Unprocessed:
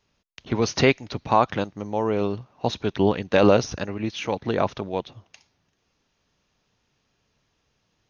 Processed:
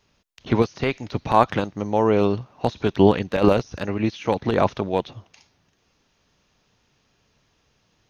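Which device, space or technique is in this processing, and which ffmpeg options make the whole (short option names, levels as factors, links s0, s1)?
de-esser from a sidechain: -filter_complex "[0:a]asplit=2[s0][s1];[s1]highpass=f=6000:w=0.5412,highpass=f=6000:w=1.3066,apad=whole_len=356947[s2];[s0][s2]sidechaincompress=threshold=0.002:ratio=12:attack=0.67:release=33,volume=1.88"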